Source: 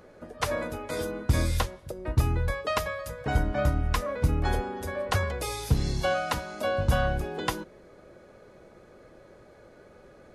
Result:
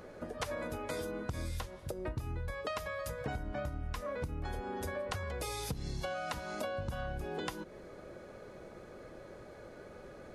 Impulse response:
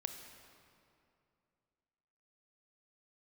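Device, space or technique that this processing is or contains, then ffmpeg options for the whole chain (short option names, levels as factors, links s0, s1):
serial compression, leveller first: -af "acompressor=threshold=0.0447:ratio=3,acompressor=threshold=0.0126:ratio=5,volume=1.26"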